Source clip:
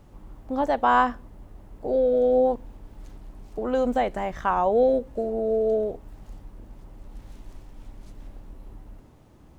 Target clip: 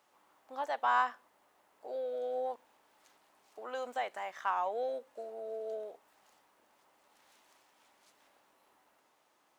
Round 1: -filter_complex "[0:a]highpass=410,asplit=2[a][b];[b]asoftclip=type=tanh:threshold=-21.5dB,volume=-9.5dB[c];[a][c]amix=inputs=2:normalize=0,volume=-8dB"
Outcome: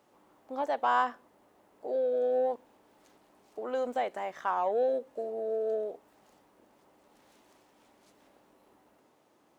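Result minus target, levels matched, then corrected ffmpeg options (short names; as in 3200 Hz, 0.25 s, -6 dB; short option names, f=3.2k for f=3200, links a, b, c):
500 Hz band +3.0 dB
-filter_complex "[0:a]highpass=910,asplit=2[a][b];[b]asoftclip=type=tanh:threshold=-21.5dB,volume=-9.5dB[c];[a][c]amix=inputs=2:normalize=0,volume=-8dB"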